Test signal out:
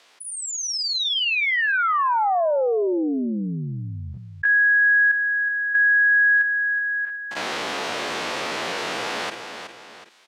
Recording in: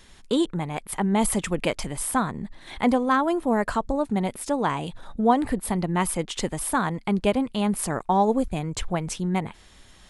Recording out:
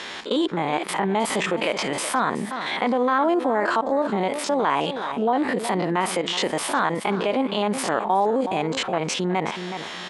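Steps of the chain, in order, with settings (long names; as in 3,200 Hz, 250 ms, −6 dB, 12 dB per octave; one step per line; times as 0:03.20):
spectrum averaged block by block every 50 ms
brickwall limiter −19.5 dBFS
band-pass filter 390–4,200 Hz
on a send: repeating echo 371 ms, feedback 17%, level −16.5 dB
on the sum: envelope flattener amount 50%
level +8 dB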